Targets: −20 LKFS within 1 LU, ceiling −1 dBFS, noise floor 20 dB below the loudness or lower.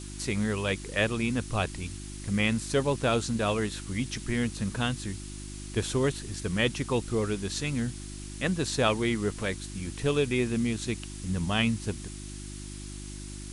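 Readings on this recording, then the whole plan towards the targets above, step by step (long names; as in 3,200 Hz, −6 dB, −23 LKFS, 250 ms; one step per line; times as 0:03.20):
mains hum 50 Hz; hum harmonics up to 350 Hz; level of the hum −38 dBFS; background noise floor −40 dBFS; target noise floor −50 dBFS; integrated loudness −29.5 LKFS; sample peak −11.0 dBFS; target loudness −20.0 LKFS
→ hum removal 50 Hz, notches 7
broadband denoise 10 dB, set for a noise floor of −40 dBFS
level +9.5 dB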